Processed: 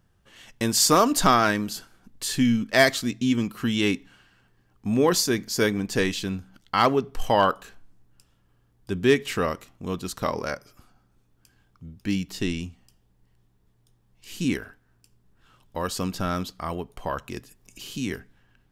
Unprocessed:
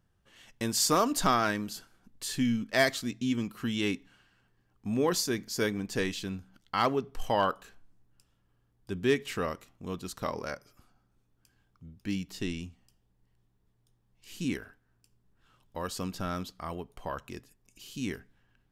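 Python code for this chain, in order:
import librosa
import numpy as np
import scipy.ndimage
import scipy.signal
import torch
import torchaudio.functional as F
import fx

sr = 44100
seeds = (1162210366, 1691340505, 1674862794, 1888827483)

y = fx.band_squash(x, sr, depth_pct=40, at=(17.36, 18.12))
y = y * 10.0 ** (7.0 / 20.0)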